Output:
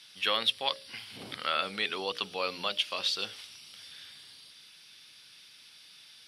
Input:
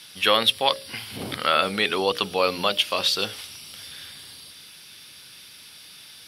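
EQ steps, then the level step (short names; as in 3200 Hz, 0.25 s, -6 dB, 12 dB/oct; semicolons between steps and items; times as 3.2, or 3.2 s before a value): HPF 96 Hz; pre-emphasis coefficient 0.9; tape spacing loss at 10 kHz 23 dB; +7.0 dB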